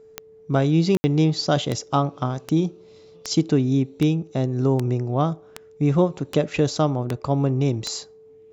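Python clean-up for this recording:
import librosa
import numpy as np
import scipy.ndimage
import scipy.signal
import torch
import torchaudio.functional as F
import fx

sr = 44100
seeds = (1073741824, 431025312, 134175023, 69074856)

y = fx.fix_declick_ar(x, sr, threshold=10.0)
y = fx.notch(y, sr, hz=440.0, q=30.0)
y = fx.fix_ambience(y, sr, seeds[0], print_start_s=8.01, print_end_s=8.51, start_s=0.97, end_s=1.04)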